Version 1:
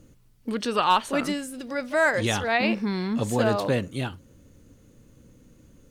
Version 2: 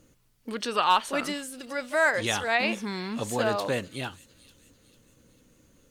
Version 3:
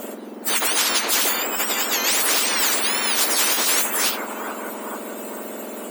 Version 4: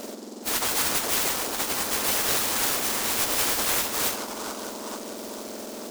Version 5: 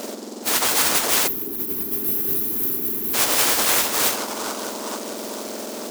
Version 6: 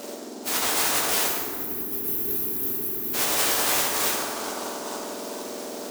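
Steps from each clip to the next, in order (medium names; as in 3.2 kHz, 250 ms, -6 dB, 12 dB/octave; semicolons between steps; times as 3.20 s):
bass shelf 380 Hz -9.5 dB; feedback echo behind a high-pass 448 ms, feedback 45%, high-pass 4.9 kHz, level -12 dB
spectrum inverted on a logarithmic axis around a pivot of 2 kHz; spectrum-flattening compressor 10:1; trim +7.5 dB
delay time shaken by noise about 5.5 kHz, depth 0.11 ms; trim -4 dB
bass shelf 99 Hz -11 dB; time-frequency box 1.27–3.14 s, 440–11000 Hz -21 dB; trim +6 dB
reverberation RT60 1.9 s, pre-delay 3 ms, DRR -1.5 dB; trim -7 dB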